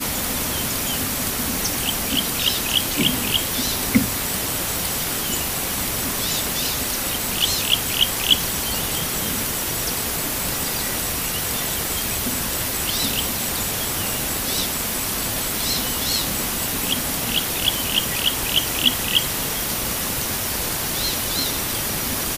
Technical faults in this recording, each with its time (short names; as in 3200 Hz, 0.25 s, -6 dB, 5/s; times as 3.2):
crackle 21/s -28 dBFS